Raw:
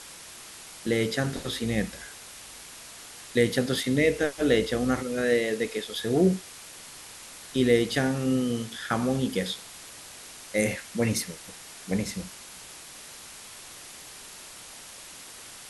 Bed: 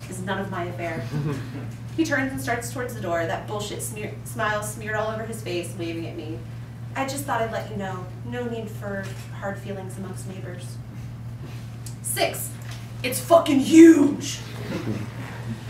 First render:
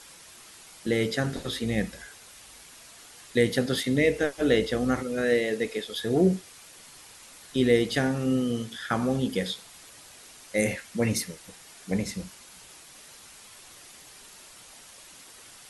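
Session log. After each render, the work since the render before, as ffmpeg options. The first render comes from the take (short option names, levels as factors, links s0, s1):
-af "afftdn=nr=6:nf=-45"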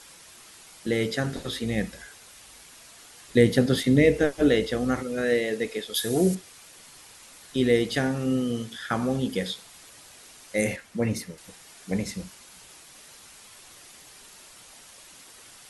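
-filter_complex "[0:a]asettb=1/sr,asplit=3[s0][s1][s2];[s0]atrim=end=3.284[s3];[s1]atrim=start=3.28:end=4.49,asetpts=PTS-STARTPTS,afade=t=in:d=0.004:c=qsin,afade=t=out:st=1.206:d=0.004:c=qsin,lowshelf=f=460:g=7.5[s4];[s2]atrim=start=4.486[s5];[s3][s4]acrossfade=d=0.004:c1=hsin:c2=qsin[s6];[s6][s5]acrossfade=d=0.004:c1=qsin:c2=hsin,asettb=1/sr,asplit=3[s7][s8][s9];[s7]atrim=end=5.944[s10];[s8]atrim=start=5.94:end=6.35,asetpts=PTS-STARTPTS,afade=t=in:d=0.004:c=qsin,afade=t=out:st=0.406:d=0.004:c=qsin,aemphasis=mode=production:type=75fm[s11];[s9]atrim=start=6.346[s12];[s10][s11]acrossfade=d=0.004:c1=hsin:c2=qsin[s13];[s13][s12]acrossfade=d=0.004:c1=qsin:c2=hsin,asettb=1/sr,asplit=3[s14][s15][s16];[s14]atrim=end=10.764[s17];[s15]atrim=start=10.76:end=11.38,asetpts=PTS-STARTPTS,afade=t=in:d=0.004:c=qsin,afade=t=out:st=0.616:d=0.004:c=qsin,highshelf=f=2100:g=-7.5[s18];[s16]atrim=start=11.376[s19];[s17][s18]acrossfade=d=0.004:c1=hsin:c2=qsin[s20];[s20][s19]acrossfade=d=0.004:c1=qsin:c2=hsin"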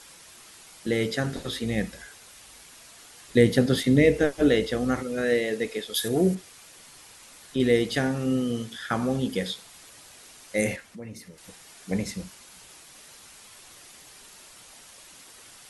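-filter_complex "[0:a]asettb=1/sr,asplit=3[s0][s1][s2];[s0]atrim=end=6.084[s3];[s1]atrim=start=6.08:end=7.6,asetpts=PTS-STARTPTS,afade=t=in:d=0.004:c=qsin,afade=t=out:st=1.516:d=0.004:c=qsin,acrossover=split=3000[s4][s5];[s5]acompressor=threshold=0.00708:ratio=4:attack=1:release=60[s6];[s4][s6]amix=inputs=2:normalize=0[s7];[s2]atrim=start=7.596[s8];[s3][s7]acrossfade=d=0.004:c1=hsin:c2=qsin[s9];[s9][s8]acrossfade=d=0.004:c1=qsin:c2=hsin,asettb=1/sr,asplit=3[s10][s11][s12];[s10]atrim=end=10.834[s13];[s11]atrim=start=10.83:end=11.43,asetpts=PTS-STARTPTS,afade=t=in:d=0.004:c=qsin,afade=t=out:st=0.596:d=0.004:c=qsin,acompressor=threshold=0.00447:ratio=2:attack=3.2:release=140:knee=1:detection=peak[s14];[s12]atrim=start=11.426[s15];[s13][s14]acrossfade=d=0.004:c1=hsin:c2=qsin[s16];[s16][s15]acrossfade=d=0.004:c1=qsin:c2=hsin"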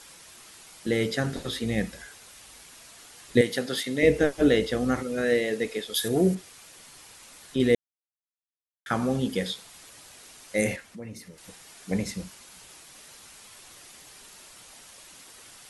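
-filter_complex "[0:a]asettb=1/sr,asplit=3[s0][s1][s2];[s0]atrim=end=3.414[s3];[s1]atrim=start=3.41:end=4.03,asetpts=PTS-STARTPTS,afade=t=in:d=0.004:c=qsin,afade=t=out:st=0.616:d=0.004:c=qsin,highpass=f=890:p=1[s4];[s2]atrim=start=4.026[s5];[s3][s4]acrossfade=d=0.004:c1=hsin:c2=qsin[s6];[s6][s5]acrossfade=d=0.004:c1=qsin:c2=hsin,asplit=3[s7][s8][s9];[s7]atrim=end=7.75,asetpts=PTS-STARTPTS,afade=t=out:st=7.746:d=0.004:c=hsin[s10];[s8]atrim=start=7.75:end=8.86,asetpts=PTS-STARTPTS,volume=0[s11];[s9]atrim=start=8.86,asetpts=PTS-STARTPTS,afade=t=in:d=0.004:c=hsin[s12];[s10][s11][s12]concat=n=3:v=0:a=1"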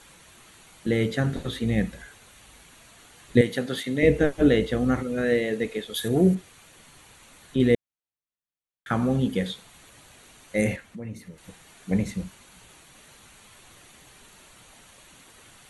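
-af "bass=f=250:g=6,treble=f=4000:g=-5,bandreject=f=5100:w=5"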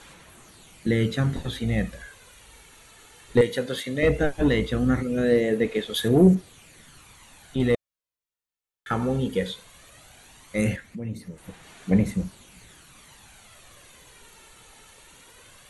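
-af "asoftclip=type=tanh:threshold=0.355,aphaser=in_gain=1:out_gain=1:delay=2.3:decay=0.42:speed=0.17:type=sinusoidal"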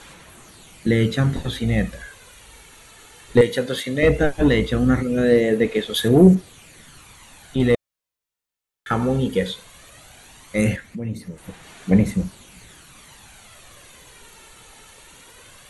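-af "volume=1.68"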